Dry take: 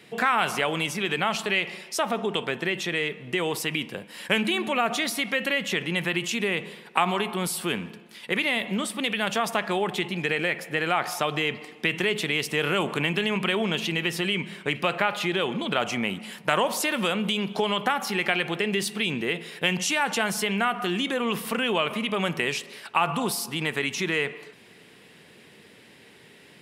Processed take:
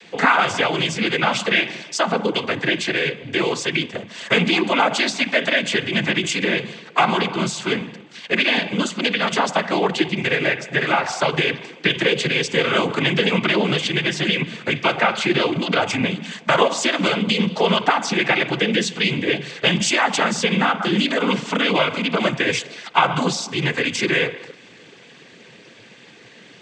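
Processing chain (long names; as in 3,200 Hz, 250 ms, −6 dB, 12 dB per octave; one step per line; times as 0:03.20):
cochlear-implant simulation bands 16
level +7 dB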